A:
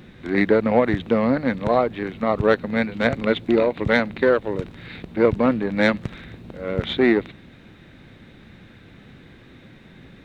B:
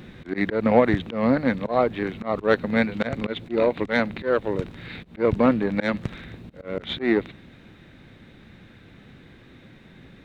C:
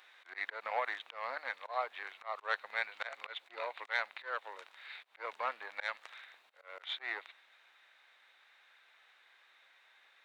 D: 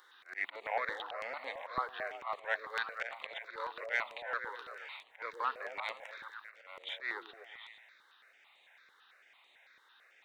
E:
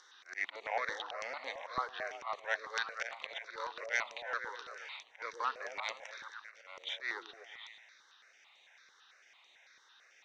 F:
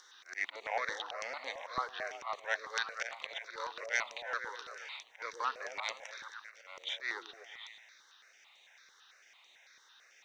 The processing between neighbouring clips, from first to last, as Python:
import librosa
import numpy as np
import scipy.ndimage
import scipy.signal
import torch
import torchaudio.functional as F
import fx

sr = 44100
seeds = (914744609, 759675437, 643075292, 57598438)

y1 = fx.rider(x, sr, range_db=10, speed_s=2.0)
y1 = fx.auto_swell(y1, sr, attack_ms=151.0)
y2 = scipy.signal.sosfilt(scipy.signal.butter(4, 810.0, 'highpass', fs=sr, output='sos'), y1)
y2 = y2 * librosa.db_to_amplitude(-8.5)
y3 = fx.echo_stepped(y2, sr, ms=119, hz=330.0, octaves=0.7, feedback_pct=70, wet_db=-1.5)
y3 = fx.phaser_held(y3, sr, hz=9.0, low_hz=670.0, high_hz=5300.0)
y3 = y3 * librosa.db_to_amplitude(3.5)
y4 = fx.lowpass_res(y3, sr, hz=5900.0, q=7.4)
y4 = y4 * librosa.db_to_amplitude(-1.0)
y5 = fx.high_shelf(y4, sr, hz=7500.0, db=11.0)